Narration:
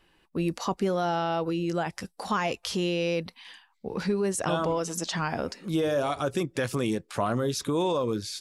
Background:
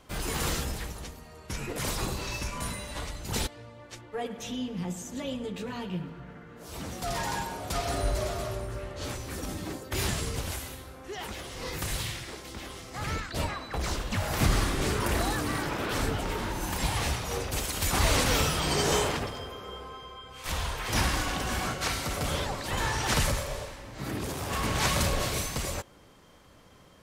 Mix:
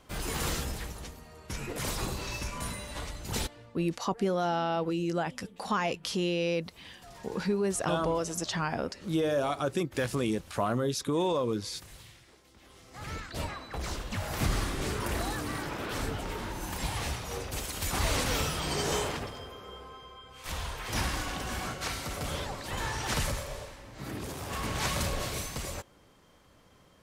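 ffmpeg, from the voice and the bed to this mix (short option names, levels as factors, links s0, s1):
-filter_complex "[0:a]adelay=3400,volume=0.794[s0];[1:a]volume=3.76,afade=t=out:st=3.37:d=0.66:silence=0.158489,afade=t=in:st=12.59:d=0.71:silence=0.211349[s1];[s0][s1]amix=inputs=2:normalize=0"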